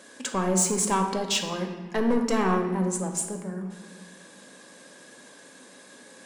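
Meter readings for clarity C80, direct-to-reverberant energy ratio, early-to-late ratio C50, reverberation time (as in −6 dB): 8.5 dB, 3.5 dB, 6.5 dB, 1.4 s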